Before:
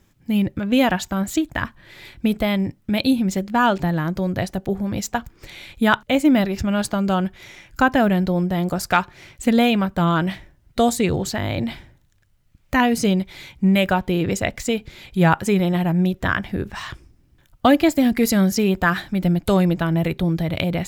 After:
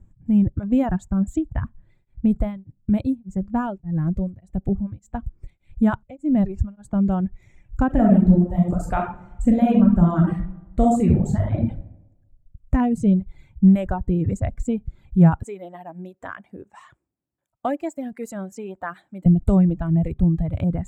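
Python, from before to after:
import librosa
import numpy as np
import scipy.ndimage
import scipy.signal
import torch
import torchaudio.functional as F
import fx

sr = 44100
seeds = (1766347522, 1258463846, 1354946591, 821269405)

y = fx.tremolo_abs(x, sr, hz=1.7, at=(1.59, 6.94), fade=0.02)
y = fx.reverb_throw(y, sr, start_s=7.86, length_s=3.73, rt60_s=0.98, drr_db=-2.0)
y = fx.highpass(y, sr, hz=530.0, slope=12, at=(15.43, 19.26))
y = fx.riaa(y, sr, side='playback')
y = fx.dereverb_blind(y, sr, rt60_s=1.5)
y = fx.curve_eq(y, sr, hz=(200.0, 440.0, 700.0, 5100.0, 7700.0, 11000.0), db=(0, -5, -2, -17, 6, -5))
y = y * 10.0 ** (-4.5 / 20.0)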